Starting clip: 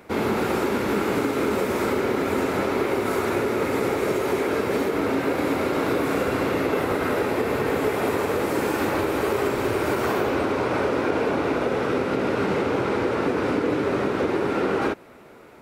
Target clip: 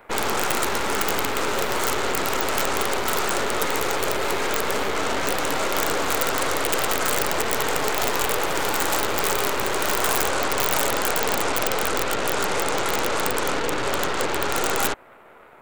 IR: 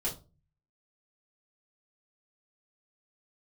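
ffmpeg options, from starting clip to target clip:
-filter_complex "[0:a]acrossover=split=560 2300:gain=0.178 1 0.126[link_01][link_02][link_03];[link_01][link_02][link_03]amix=inputs=3:normalize=0,aeval=exprs='(mod(10*val(0)+1,2)-1)/10':channel_layout=same,aeval=exprs='0.1*(cos(1*acos(clip(val(0)/0.1,-1,1)))-cos(1*PI/2))+0.0282*(cos(8*acos(clip(val(0)/0.1,-1,1)))-cos(8*PI/2))':channel_layout=same,aexciter=amount=3.9:drive=1.3:freq=7100,volume=3.5dB"

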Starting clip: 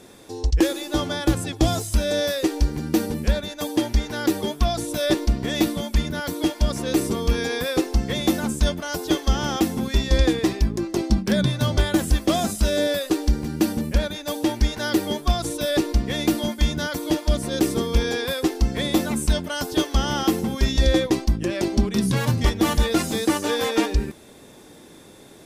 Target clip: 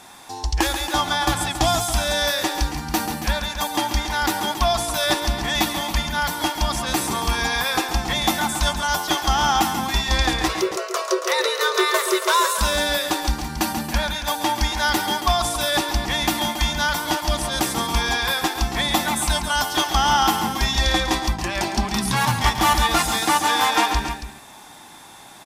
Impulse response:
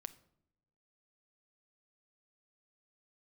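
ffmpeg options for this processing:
-filter_complex "[0:a]lowshelf=frequency=630:width_type=q:width=3:gain=-9,asplit=3[link_01][link_02][link_03];[link_01]afade=type=out:start_time=10.48:duration=0.02[link_04];[link_02]afreqshift=320,afade=type=in:start_time=10.48:duration=0.02,afade=type=out:start_time=12.57:duration=0.02[link_05];[link_03]afade=type=in:start_time=12.57:duration=0.02[link_06];[link_04][link_05][link_06]amix=inputs=3:normalize=0,aecho=1:1:137|277:0.355|0.282,volume=5.5dB"

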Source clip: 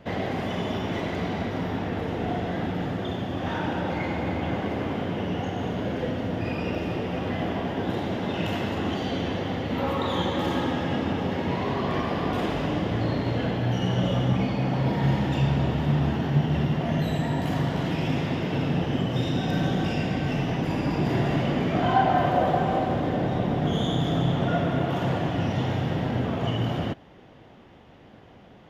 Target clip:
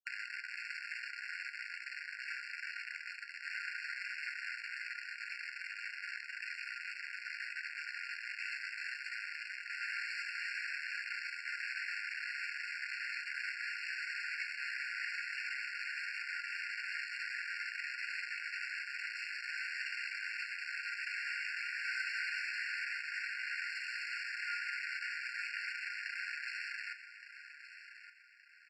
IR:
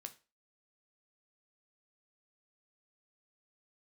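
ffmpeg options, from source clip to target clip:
-filter_complex "[0:a]acrusher=bits=3:mix=0:aa=0.000001,aemphasis=mode=reproduction:type=bsi,acompressor=mode=upward:threshold=-24dB:ratio=2.5,lowpass=5700,aecho=1:1:1169|2338|3507|4676:0.251|0.0879|0.0308|0.0108[link_01];[1:a]atrim=start_sample=2205,asetrate=52920,aresample=44100[link_02];[link_01][link_02]afir=irnorm=-1:irlink=0,afftfilt=real='re*eq(mod(floor(b*sr/1024/1400),2),1)':imag='im*eq(mod(floor(b*sr/1024/1400),2),1)':win_size=1024:overlap=0.75,volume=1.5dB"

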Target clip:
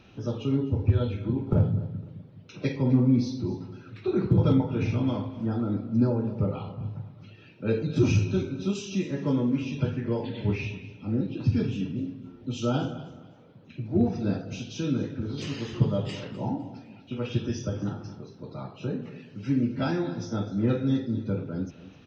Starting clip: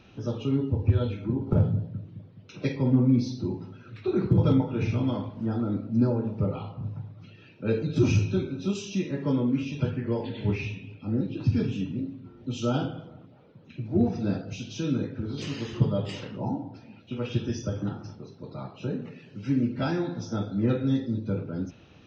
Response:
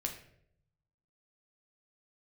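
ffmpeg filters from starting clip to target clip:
-af "aecho=1:1:254|508|762:0.141|0.0438|0.0136"

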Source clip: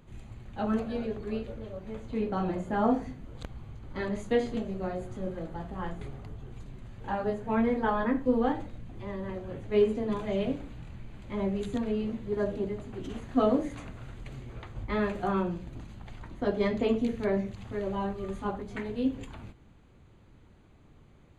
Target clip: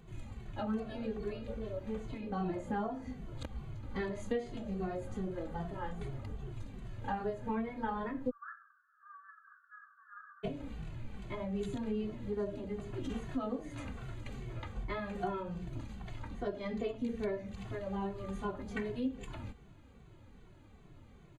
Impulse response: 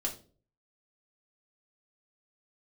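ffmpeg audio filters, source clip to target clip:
-filter_complex "[0:a]asplit=3[link_01][link_02][link_03];[link_01]afade=type=out:start_time=8.29:duration=0.02[link_04];[link_02]asuperpass=centerf=1400:order=20:qfactor=2.4,afade=type=in:start_time=8.29:duration=0.02,afade=type=out:start_time=10.43:duration=0.02[link_05];[link_03]afade=type=in:start_time=10.43:duration=0.02[link_06];[link_04][link_05][link_06]amix=inputs=3:normalize=0,acompressor=threshold=-34dB:ratio=6,asplit=2[link_07][link_08];[link_08]adelay=2.2,afreqshift=-2.5[link_09];[link_07][link_09]amix=inputs=2:normalize=1,volume=3dB"

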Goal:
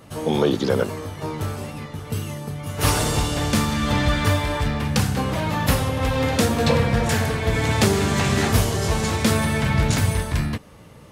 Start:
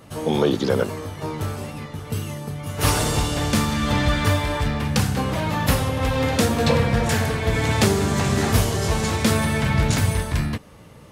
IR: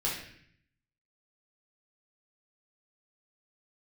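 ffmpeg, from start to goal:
-filter_complex "[0:a]asettb=1/sr,asplit=3[link_01][link_02][link_03];[link_01]atrim=end=7.934[link_04];[link_02]atrim=start=7.93:end=8.48,asetpts=PTS-STARTPTS,afade=type=in:duration=0.004:curve=qsin,afade=type=out:start_time=0.546:duration=0.004:curve=qsin,equalizer=frequency=2600:width_type=o:width=1.6:gain=4.5[link_05];[link_03]atrim=start=8.476[link_06];[link_04][link_05]acrossfade=duration=0.004:curve1=hsin:curve2=qsin[link_07];[link_07][link_06]acrossfade=duration=0.004:curve1=qsin:curve2=hsin"

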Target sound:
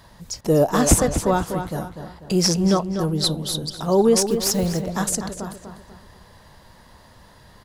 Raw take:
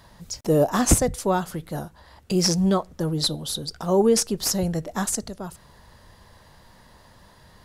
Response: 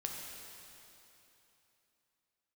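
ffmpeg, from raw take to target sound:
-filter_complex "[0:a]asettb=1/sr,asplit=3[link_01][link_02][link_03];[link_01]atrim=end=4.194[link_04];[link_02]atrim=start=4.19:end=4.83,asetpts=PTS-STARTPTS,afade=type=in:duration=0.004:curve=qsin,afade=type=out:start_time=0.636:duration=0.004:curve=qsin,acrusher=bits=5:mode=log:mix=0:aa=0.000001[link_05];[link_03]atrim=start=4.826[link_06];[link_04][link_05]acrossfade=duration=0.004:curve1=hsin:curve2=qsin[link_07];[link_07][link_06]acrossfade=duration=0.004:curve1=qsin:curve2=hsin,asplit=2[link_08][link_09];[link_09]adelay=246,lowpass=frequency=3700:poles=1,volume=-8dB,asplit=2[link_10][link_11];[link_11]adelay=246,lowpass=frequency=3700:poles=1,volume=0.43,asplit=2[link_12][link_13];[link_13]adelay=246,lowpass=frequency=3700:poles=1,volume=0.43,asplit=2[link_14][link_15];[link_15]adelay=246,lowpass=frequency=3700:poles=1,volume=0.43,asplit=2[link_16][link_17];[link_17]adelay=246,lowpass=frequency=3700:poles=1,volume=0.43[link_18];[link_10][link_12][link_14][link_16][link_18]amix=inputs=5:normalize=0[link_19];[link_08][link_19]amix=inputs=2:normalize=0,volume=2dB"

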